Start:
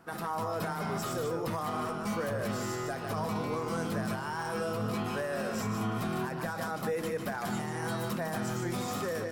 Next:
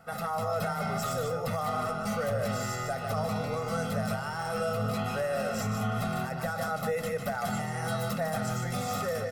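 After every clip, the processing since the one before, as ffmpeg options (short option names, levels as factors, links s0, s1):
-af "aecho=1:1:1.5:0.91"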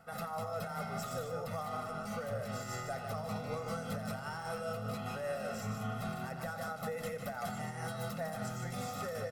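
-filter_complex "[0:a]alimiter=level_in=1.06:limit=0.0631:level=0:latency=1:release=167,volume=0.944,tremolo=f=5.1:d=0.37,asplit=4[s0][s1][s2][s3];[s1]adelay=87,afreqshift=32,volume=0.178[s4];[s2]adelay=174,afreqshift=64,volume=0.055[s5];[s3]adelay=261,afreqshift=96,volume=0.0172[s6];[s0][s4][s5][s6]amix=inputs=4:normalize=0,volume=0.631"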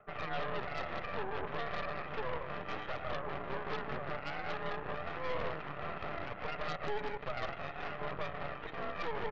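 -af "aphaser=in_gain=1:out_gain=1:delay=4.9:decay=0.33:speed=0.37:type=triangular,highpass=f=240:t=q:w=0.5412,highpass=f=240:t=q:w=1.307,lowpass=f=2300:t=q:w=0.5176,lowpass=f=2300:t=q:w=0.7071,lowpass=f=2300:t=q:w=1.932,afreqshift=-64,aeval=exprs='0.0447*(cos(1*acos(clip(val(0)/0.0447,-1,1)))-cos(1*PI/2))+0.0178*(cos(6*acos(clip(val(0)/0.0447,-1,1)))-cos(6*PI/2))':c=same,volume=0.75"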